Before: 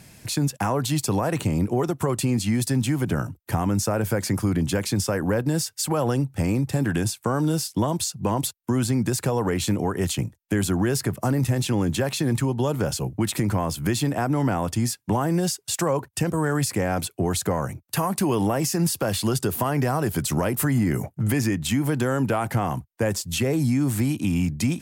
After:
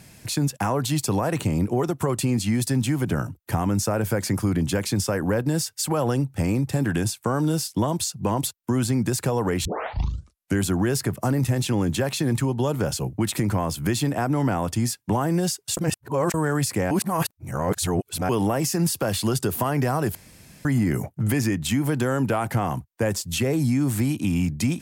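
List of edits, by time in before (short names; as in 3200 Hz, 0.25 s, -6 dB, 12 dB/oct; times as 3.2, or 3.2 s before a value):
9.65 tape start 0.95 s
15.77–16.34 reverse
16.91–18.29 reverse
20.15–20.65 room tone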